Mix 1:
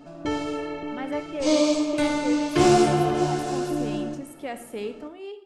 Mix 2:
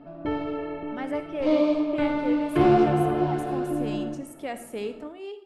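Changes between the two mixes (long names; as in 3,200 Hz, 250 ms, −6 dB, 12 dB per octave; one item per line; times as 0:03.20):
background: add high-frequency loss of the air 430 metres
master: remove notch filter 650 Hz, Q 21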